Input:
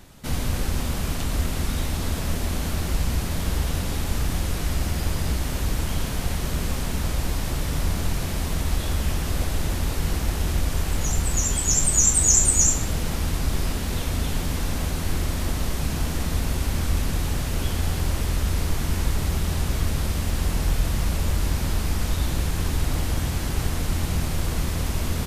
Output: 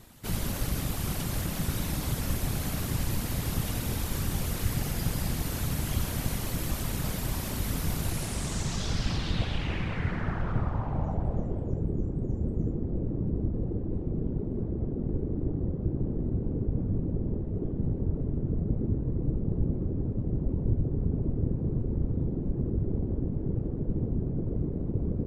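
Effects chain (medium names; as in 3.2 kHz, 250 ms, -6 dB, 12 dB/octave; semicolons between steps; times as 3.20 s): low-pass sweep 13 kHz -> 340 Hz, 7.99–11.95 s; whisper effect; trim -5.5 dB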